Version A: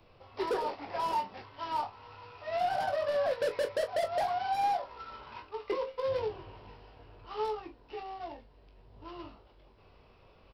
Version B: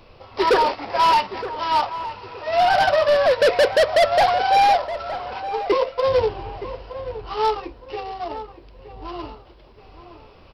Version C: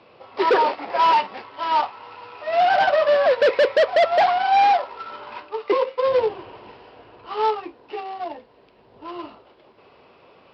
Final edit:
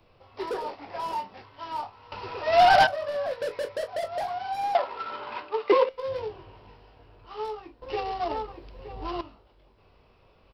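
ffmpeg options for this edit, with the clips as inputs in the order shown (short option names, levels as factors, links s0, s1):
-filter_complex "[1:a]asplit=2[s0][s1];[0:a]asplit=4[s2][s3][s4][s5];[s2]atrim=end=2.122[s6];[s0]atrim=start=2.118:end=2.872[s7];[s3]atrim=start=2.868:end=4.752[s8];[2:a]atrim=start=4.748:end=5.892[s9];[s4]atrim=start=5.888:end=7.822[s10];[s1]atrim=start=7.818:end=9.212[s11];[s5]atrim=start=9.208[s12];[s6][s7]acrossfade=d=0.004:c1=hsin:c2=hsin[s13];[s13][s8]acrossfade=d=0.004:c1=hsin:c2=hsin[s14];[s14][s9]acrossfade=d=0.004:c1=hsin:c2=hsin[s15];[s15][s10]acrossfade=d=0.004:c1=hsin:c2=hsin[s16];[s16][s11]acrossfade=d=0.004:c1=hsin:c2=hsin[s17];[s17][s12]acrossfade=d=0.004:c1=hsin:c2=hsin"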